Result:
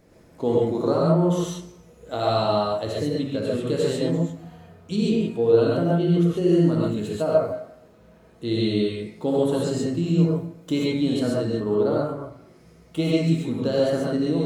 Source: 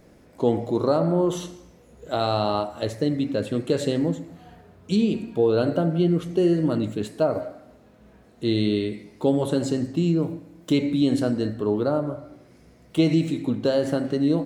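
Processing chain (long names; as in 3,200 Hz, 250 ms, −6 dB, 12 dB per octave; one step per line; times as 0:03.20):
reverb whose tail is shaped and stops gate 160 ms rising, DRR −4 dB
level −4.5 dB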